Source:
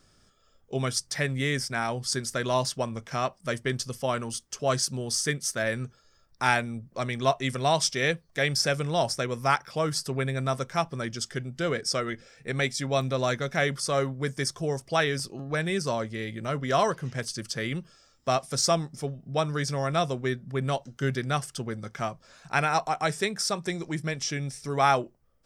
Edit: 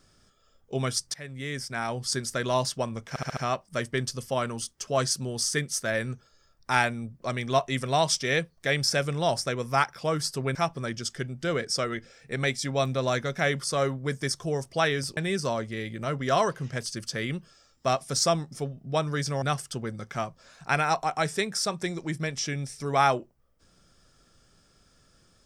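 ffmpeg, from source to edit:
-filter_complex "[0:a]asplit=9[s0][s1][s2][s3][s4][s5][s6][s7][s8];[s0]atrim=end=1.14,asetpts=PTS-STARTPTS,afade=t=out:st=1.136:d=0.004:c=hsin:silence=0.125893[s9];[s1]atrim=start=1.14:end=3.162,asetpts=PTS-STARTPTS,afade=t=in:d=0.89:silence=0.125893[s10];[s2]atrim=start=3.088:end=3.162[s11];[s3]atrim=start=3.088:end=3.162[s12];[s4]atrim=start=3.088:end=3.162[s13];[s5]atrim=start=3.088:end=10.272[s14];[s6]atrim=start=10.708:end=15.332[s15];[s7]atrim=start=15.588:end=19.842[s16];[s8]atrim=start=21.258[s17];[s9][s10]concat=n=2:v=0:a=1[s18];[s18][s11]acrossfade=d=0.004:c1=hsin:c2=hsin[s19];[s19][s12]acrossfade=d=0.004:c1=hsin:c2=hsin[s20];[s20][s13]acrossfade=d=0.004:c1=hsin:c2=hsin[s21];[s21][s14]acrossfade=d=0.004:c1=hsin:c2=hsin[s22];[s22][s15]acrossfade=d=0.004:c1=hsin:c2=hsin[s23];[s23][s16]acrossfade=d=0.004:c1=hsin:c2=hsin[s24];[s24][s17]acrossfade=d=0.004:c1=hsin:c2=hsin"

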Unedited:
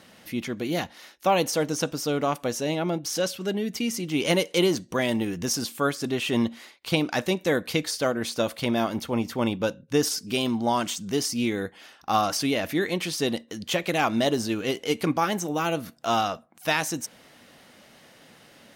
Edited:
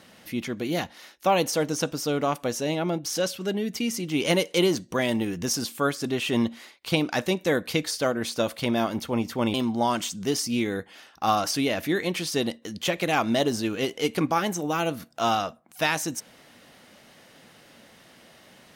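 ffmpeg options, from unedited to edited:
-filter_complex "[0:a]asplit=2[s0][s1];[s0]atrim=end=9.542[s2];[s1]atrim=start=10.398[s3];[s2][s3]acrossfade=d=0.004:c1=hsin:c2=hsin"

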